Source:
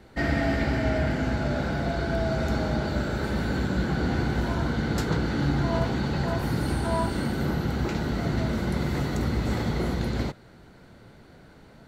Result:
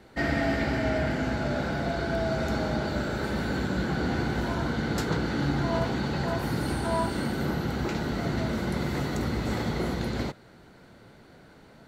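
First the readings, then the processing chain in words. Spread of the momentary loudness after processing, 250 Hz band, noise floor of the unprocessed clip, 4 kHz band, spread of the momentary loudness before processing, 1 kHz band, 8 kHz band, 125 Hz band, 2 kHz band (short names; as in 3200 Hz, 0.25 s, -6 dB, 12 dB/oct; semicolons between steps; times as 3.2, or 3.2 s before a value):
3 LU, -1.5 dB, -51 dBFS, 0.0 dB, 3 LU, 0.0 dB, 0.0 dB, -3.5 dB, 0.0 dB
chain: low shelf 120 Hz -7 dB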